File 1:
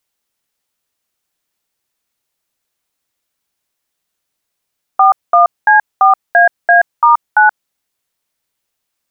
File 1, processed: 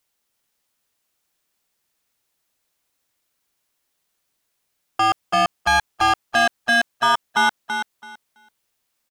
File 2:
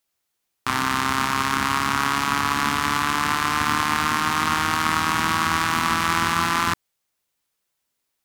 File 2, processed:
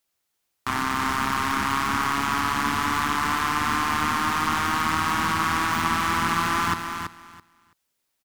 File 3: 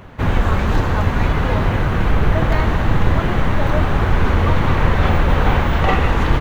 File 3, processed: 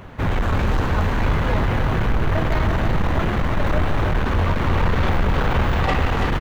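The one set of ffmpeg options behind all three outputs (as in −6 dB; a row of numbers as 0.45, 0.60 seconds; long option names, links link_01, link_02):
-af "asoftclip=type=tanh:threshold=-15dB,aecho=1:1:331|662|993:0.447|0.0804|0.0145"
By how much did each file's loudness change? −9.0, −2.0, −3.5 LU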